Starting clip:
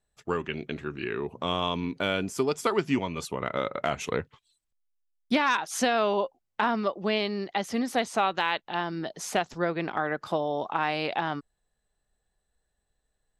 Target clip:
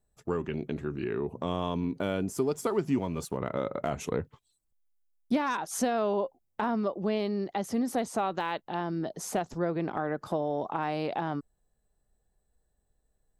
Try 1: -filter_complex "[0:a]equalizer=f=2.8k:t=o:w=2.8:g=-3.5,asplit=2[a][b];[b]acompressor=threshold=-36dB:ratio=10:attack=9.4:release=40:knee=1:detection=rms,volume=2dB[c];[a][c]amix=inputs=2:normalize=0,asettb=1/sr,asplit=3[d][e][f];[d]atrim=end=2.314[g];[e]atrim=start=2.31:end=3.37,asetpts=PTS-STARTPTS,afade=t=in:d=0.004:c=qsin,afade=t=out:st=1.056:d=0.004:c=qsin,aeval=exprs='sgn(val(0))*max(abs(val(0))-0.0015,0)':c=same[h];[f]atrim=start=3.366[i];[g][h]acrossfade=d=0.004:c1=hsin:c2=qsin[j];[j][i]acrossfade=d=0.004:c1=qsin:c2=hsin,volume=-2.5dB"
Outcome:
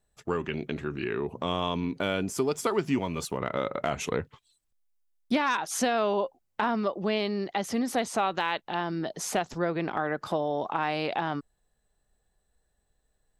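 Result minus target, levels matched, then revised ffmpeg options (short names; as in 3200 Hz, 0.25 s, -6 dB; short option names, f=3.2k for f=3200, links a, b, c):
2000 Hz band +4.5 dB
-filter_complex "[0:a]equalizer=f=2.8k:t=o:w=2.8:g=-13,asplit=2[a][b];[b]acompressor=threshold=-36dB:ratio=10:attack=9.4:release=40:knee=1:detection=rms,volume=2dB[c];[a][c]amix=inputs=2:normalize=0,asettb=1/sr,asplit=3[d][e][f];[d]atrim=end=2.314[g];[e]atrim=start=2.31:end=3.37,asetpts=PTS-STARTPTS,afade=t=in:d=0.004:c=qsin,afade=t=out:st=1.056:d=0.004:c=qsin,aeval=exprs='sgn(val(0))*max(abs(val(0))-0.0015,0)':c=same[h];[f]atrim=start=3.366[i];[g][h]acrossfade=d=0.004:c1=hsin:c2=qsin[j];[j][i]acrossfade=d=0.004:c1=qsin:c2=hsin,volume=-2.5dB"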